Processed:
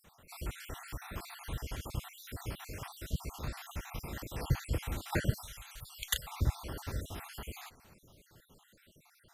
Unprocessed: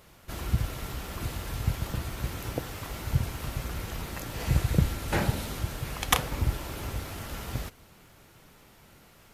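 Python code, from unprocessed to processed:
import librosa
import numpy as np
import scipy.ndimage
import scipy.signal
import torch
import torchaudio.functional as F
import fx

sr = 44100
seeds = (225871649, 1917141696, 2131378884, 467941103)

y = fx.spec_dropout(x, sr, seeds[0], share_pct=56)
y = fx.tone_stack(y, sr, knobs='10-0-10', at=(5.42, 6.27))
y = F.gain(torch.from_numpy(y), -3.0).numpy()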